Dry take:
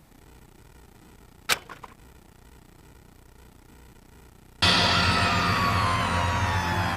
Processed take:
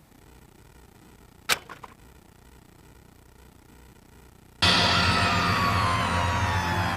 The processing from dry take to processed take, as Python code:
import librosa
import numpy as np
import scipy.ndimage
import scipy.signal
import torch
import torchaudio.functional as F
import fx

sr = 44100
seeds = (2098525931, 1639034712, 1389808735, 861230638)

y = scipy.signal.sosfilt(scipy.signal.butter(2, 41.0, 'highpass', fs=sr, output='sos'), x)